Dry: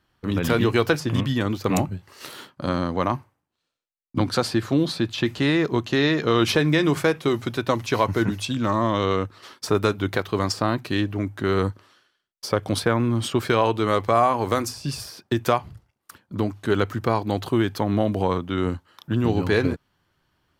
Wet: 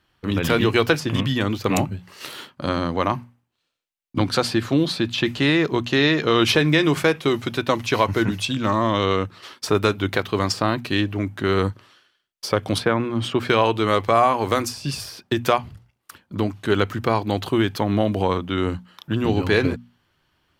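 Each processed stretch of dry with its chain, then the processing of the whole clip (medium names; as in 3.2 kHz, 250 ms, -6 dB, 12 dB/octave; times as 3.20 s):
12.78–13.49 s: high-pass 94 Hz + treble shelf 4.9 kHz -11 dB
whole clip: peaking EQ 2.8 kHz +4.5 dB 1.1 oct; hum notches 60/120/180/240 Hz; trim +1.5 dB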